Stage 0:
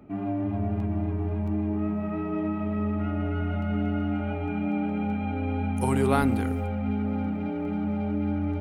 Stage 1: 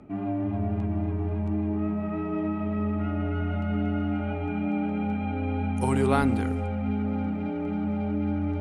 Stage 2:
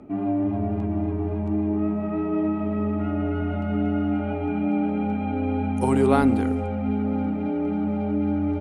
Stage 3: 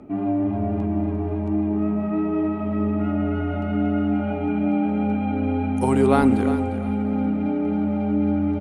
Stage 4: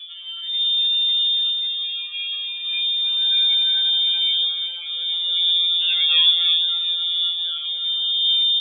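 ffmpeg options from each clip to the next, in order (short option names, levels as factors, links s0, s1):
-af "lowpass=f=9900:w=0.5412,lowpass=f=9900:w=1.3066,areverse,acompressor=mode=upward:threshold=0.0316:ratio=2.5,areverse"
-af "firequalizer=gain_entry='entry(170,0);entry(260,6);entry(1600,0)':delay=0.05:min_phase=1"
-af "aecho=1:1:351|702|1053:0.266|0.0718|0.0194,volume=1.19"
-af "aphaser=in_gain=1:out_gain=1:delay=2.3:decay=0.47:speed=0.24:type=triangular,lowpass=f=3100:t=q:w=0.5098,lowpass=f=3100:t=q:w=0.6013,lowpass=f=3100:t=q:w=0.9,lowpass=f=3100:t=q:w=2.563,afreqshift=-3700,afftfilt=real='re*2.83*eq(mod(b,8),0)':imag='im*2.83*eq(mod(b,8),0)':win_size=2048:overlap=0.75"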